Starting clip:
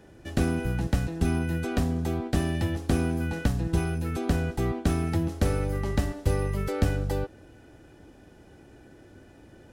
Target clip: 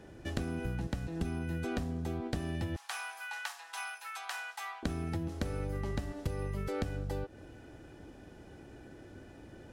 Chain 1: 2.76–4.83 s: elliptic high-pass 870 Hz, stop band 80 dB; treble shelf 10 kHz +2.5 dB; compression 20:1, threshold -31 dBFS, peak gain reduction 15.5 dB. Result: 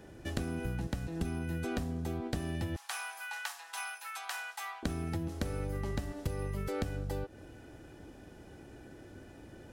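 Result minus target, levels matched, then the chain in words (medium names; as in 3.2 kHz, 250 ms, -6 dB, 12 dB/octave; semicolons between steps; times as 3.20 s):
8 kHz band +2.5 dB
2.76–4.83 s: elliptic high-pass 870 Hz, stop band 80 dB; treble shelf 10 kHz -5.5 dB; compression 20:1, threshold -31 dBFS, peak gain reduction 15.5 dB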